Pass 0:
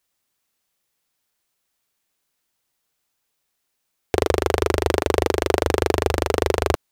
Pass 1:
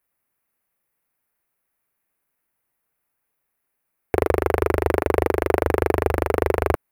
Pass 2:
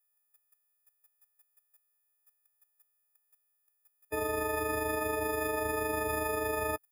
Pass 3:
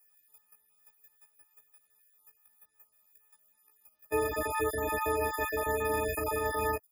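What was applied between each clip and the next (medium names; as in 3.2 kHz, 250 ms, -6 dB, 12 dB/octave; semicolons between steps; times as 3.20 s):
high-order bell 5 kHz -14.5 dB
partials quantised in pitch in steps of 6 st; tremolo 5.7 Hz, depth 60%; level held to a coarse grid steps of 15 dB; trim -2 dB
random holes in the spectrogram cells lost 21%; chorus voices 6, 0.53 Hz, delay 16 ms, depth 2.4 ms; three bands compressed up and down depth 40%; trim +4.5 dB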